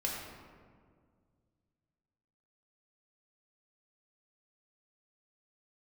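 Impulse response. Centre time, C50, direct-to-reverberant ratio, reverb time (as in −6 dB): 81 ms, 0.5 dB, −3.5 dB, 1.9 s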